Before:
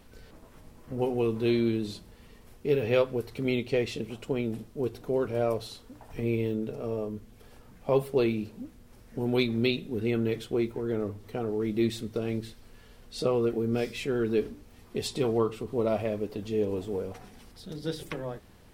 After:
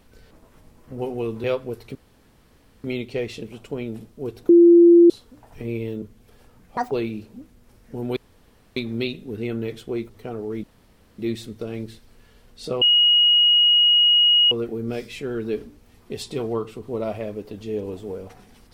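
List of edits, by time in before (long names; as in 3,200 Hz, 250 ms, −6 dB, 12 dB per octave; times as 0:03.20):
0:01.44–0:02.91: remove
0:03.42: splice in room tone 0.89 s
0:05.07–0:05.68: beep over 343 Hz −7.5 dBFS
0:06.60–0:07.14: remove
0:07.89–0:08.15: play speed 180%
0:09.40: splice in room tone 0.60 s
0:10.73–0:11.19: remove
0:11.73: splice in room tone 0.55 s
0:13.36: insert tone 2,890 Hz −12.5 dBFS 1.70 s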